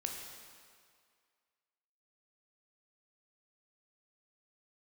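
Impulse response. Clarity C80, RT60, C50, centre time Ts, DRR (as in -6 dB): 4.5 dB, 2.1 s, 3.0 dB, 67 ms, 1.0 dB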